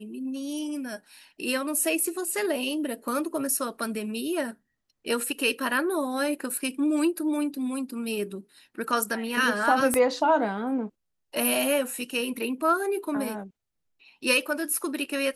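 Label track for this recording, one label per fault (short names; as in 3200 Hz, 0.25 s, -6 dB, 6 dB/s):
9.940000	9.940000	pop -11 dBFS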